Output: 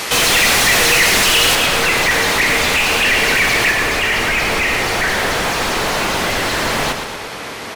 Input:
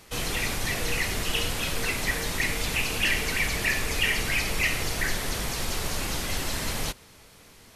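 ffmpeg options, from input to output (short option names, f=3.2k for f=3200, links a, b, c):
-filter_complex "[0:a]asetnsamples=n=441:p=0,asendcmd='1.55 lowpass f 2400;3.71 lowpass f 1400',asplit=2[a][b];[b]highpass=f=720:p=1,volume=33dB,asoftclip=type=tanh:threshold=-11.5dB[c];[a][c]amix=inputs=2:normalize=0,lowpass=f=6.6k:p=1,volume=-6dB,aecho=1:1:116|232|348|464|580|696:0.398|0.203|0.104|0.0528|0.0269|0.0137,volume=5.5dB"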